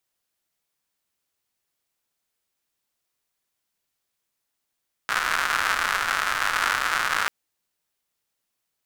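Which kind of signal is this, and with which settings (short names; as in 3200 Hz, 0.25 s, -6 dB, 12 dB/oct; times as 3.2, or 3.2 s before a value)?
rain from filtered ticks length 2.19 s, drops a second 200, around 1400 Hz, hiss -20.5 dB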